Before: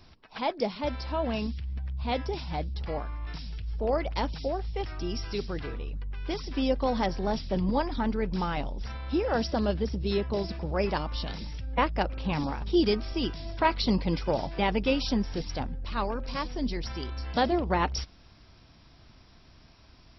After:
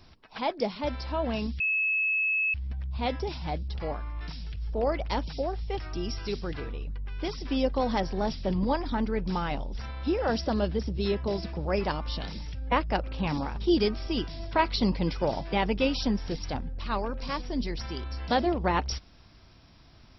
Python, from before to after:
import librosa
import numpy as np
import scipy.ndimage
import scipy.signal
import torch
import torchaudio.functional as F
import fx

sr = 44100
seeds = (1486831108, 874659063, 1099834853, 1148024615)

y = fx.edit(x, sr, fx.insert_tone(at_s=1.6, length_s=0.94, hz=2590.0, db=-23.5), tone=tone)